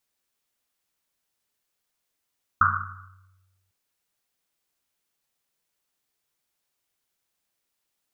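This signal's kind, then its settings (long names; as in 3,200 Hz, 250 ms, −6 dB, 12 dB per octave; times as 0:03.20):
drum after Risset, pitch 94 Hz, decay 1.47 s, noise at 1,300 Hz, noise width 370 Hz, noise 75%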